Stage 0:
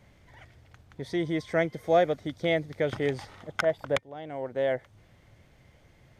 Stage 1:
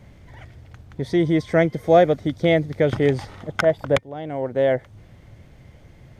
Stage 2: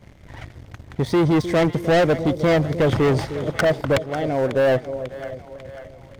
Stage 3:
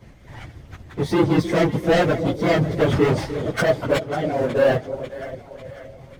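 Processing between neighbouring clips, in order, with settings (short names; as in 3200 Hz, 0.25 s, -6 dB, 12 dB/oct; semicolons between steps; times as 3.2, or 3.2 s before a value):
low shelf 460 Hz +7.5 dB; gain +5 dB
sample leveller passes 2; split-band echo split 630 Hz, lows 0.307 s, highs 0.545 s, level -15 dB; soft clip -13.5 dBFS, distortion -11 dB
phase scrambler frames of 50 ms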